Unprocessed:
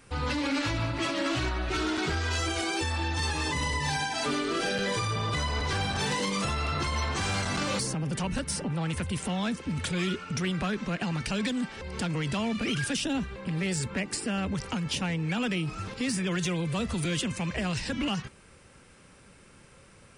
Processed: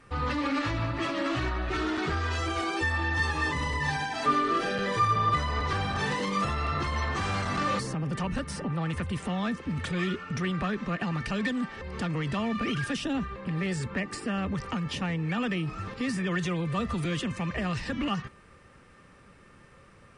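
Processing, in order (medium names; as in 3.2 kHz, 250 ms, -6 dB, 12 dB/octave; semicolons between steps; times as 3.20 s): low-pass 2.6 kHz 6 dB/octave; small resonant body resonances 1.2/1.8 kHz, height 15 dB, ringing for 95 ms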